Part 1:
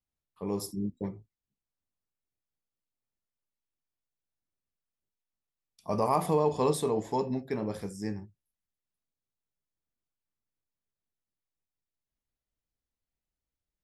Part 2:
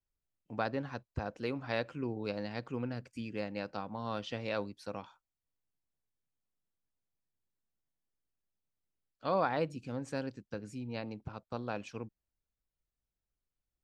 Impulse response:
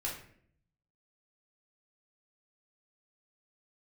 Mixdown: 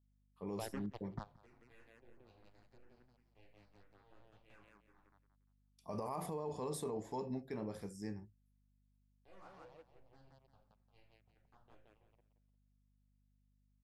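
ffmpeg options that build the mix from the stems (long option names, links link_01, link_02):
-filter_complex "[0:a]adynamicequalizer=threshold=0.00251:dfrequency=3200:dqfactor=1.3:tfrequency=3200:tqfactor=1.3:attack=5:release=100:ratio=0.375:range=2.5:mode=cutabove:tftype=bell,volume=-9dB,asplit=2[link_01][link_02];[1:a]acrusher=bits=4:mix=0:aa=0.5,highshelf=frequency=4200:gain=-10,asplit=2[link_03][link_04];[link_04]afreqshift=-2.9[link_05];[link_03][link_05]amix=inputs=2:normalize=1,volume=-5.5dB,asplit=3[link_06][link_07][link_08];[link_07]volume=-23.5dB[link_09];[link_08]volume=-22dB[link_10];[link_02]apad=whole_len=610156[link_11];[link_06][link_11]sidechaingate=range=-33dB:threshold=-56dB:ratio=16:detection=peak[link_12];[2:a]atrim=start_sample=2205[link_13];[link_09][link_13]afir=irnorm=-1:irlink=0[link_14];[link_10]aecho=0:1:175|350|525|700:1|0.3|0.09|0.027[link_15];[link_01][link_12][link_14][link_15]amix=inputs=4:normalize=0,aeval=exprs='val(0)+0.0002*(sin(2*PI*50*n/s)+sin(2*PI*2*50*n/s)/2+sin(2*PI*3*50*n/s)/3+sin(2*PI*4*50*n/s)/4+sin(2*PI*5*50*n/s)/5)':channel_layout=same,alimiter=level_in=8dB:limit=-24dB:level=0:latency=1:release=29,volume=-8dB"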